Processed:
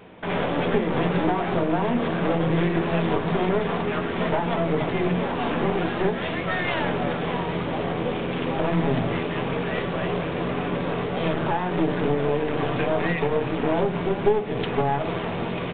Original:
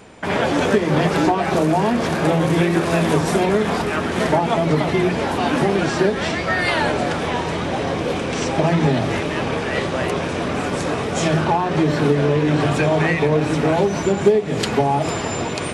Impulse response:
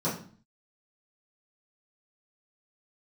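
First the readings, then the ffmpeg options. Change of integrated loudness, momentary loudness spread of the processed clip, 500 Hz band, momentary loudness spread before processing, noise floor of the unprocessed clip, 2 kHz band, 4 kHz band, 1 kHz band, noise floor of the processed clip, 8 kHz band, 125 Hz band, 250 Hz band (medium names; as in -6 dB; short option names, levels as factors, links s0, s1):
-5.5 dB, 4 LU, -5.0 dB, 5 LU, -24 dBFS, -6.5 dB, -7.0 dB, -5.5 dB, -29 dBFS, under -40 dB, -6.0 dB, -5.5 dB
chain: -filter_complex "[0:a]aeval=exprs='clip(val(0),-1,0.0501)':c=same,asplit=2[s0][s1];[1:a]atrim=start_sample=2205[s2];[s1][s2]afir=irnorm=-1:irlink=0,volume=0.112[s3];[s0][s3]amix=inputs=2:normalize=0,aresample=8000,aresample=44100,volume=0.631"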